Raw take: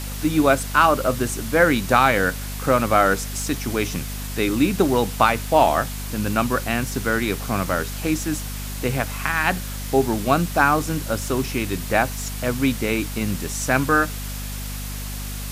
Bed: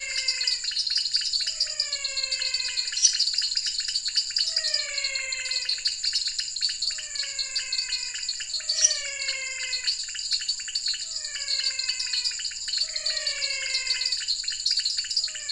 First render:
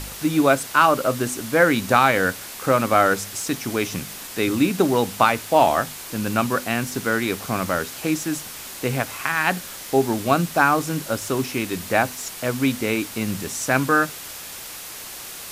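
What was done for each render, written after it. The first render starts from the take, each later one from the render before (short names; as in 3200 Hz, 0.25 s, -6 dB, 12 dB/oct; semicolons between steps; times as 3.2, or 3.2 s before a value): de-hum 50 Hz, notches 5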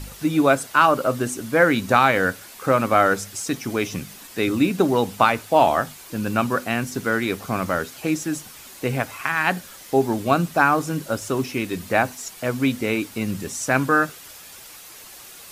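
denoiser 8 dB, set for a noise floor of -36 dBFS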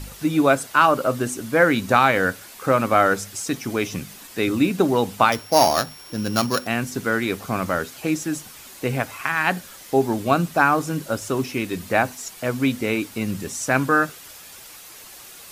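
5.32–6.67 sample sorter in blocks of 8 samples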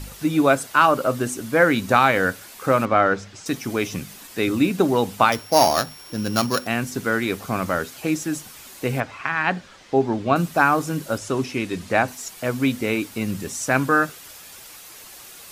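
2.85–3.46 air absorption 150 m; 9–10.36 air absorption 130 m; 11.18–12.08 LPF 8800 Hz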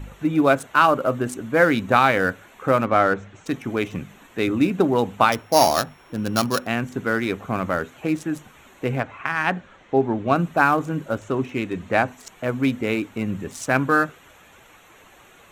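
Wiener smoothing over 9 samples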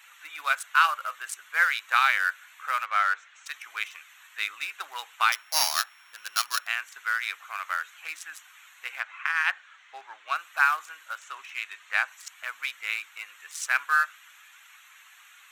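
HPF 1300 Hz 24 dB/oct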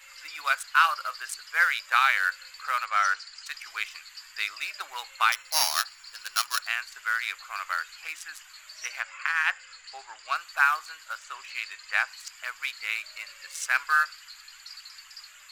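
add bed -20.5 dB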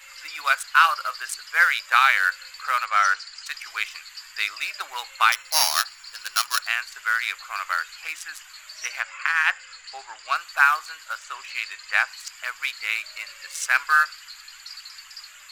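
gain +4.5 dB; limiter -3 dBFS, peak gain reduction 1.5 dB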